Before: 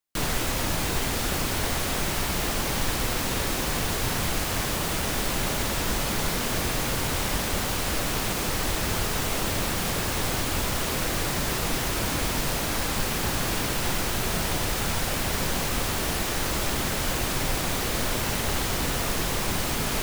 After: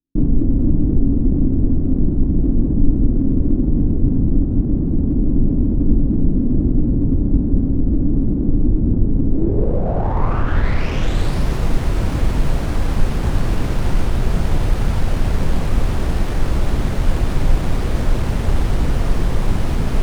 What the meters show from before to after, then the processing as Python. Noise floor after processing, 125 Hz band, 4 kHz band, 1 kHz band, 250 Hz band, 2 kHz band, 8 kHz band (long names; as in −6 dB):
−20 dBFS, +12.5 dB, −9.5 dB, −1.0 dB, +13.0 dB, −5.0 dB, −13.5 dB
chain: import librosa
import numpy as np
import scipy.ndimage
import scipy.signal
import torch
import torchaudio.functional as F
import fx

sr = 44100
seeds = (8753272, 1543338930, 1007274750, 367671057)

y = fx.tilt_eq(x, sr, slope=-3.5)
y = fx.filter_sweep_lowpass(y, sr, from_hz=280.0, to_hz=8300.0, start_s=9.3, end_s=11.7, q=4.3)
y = fx.running_max(y, sr, window=5)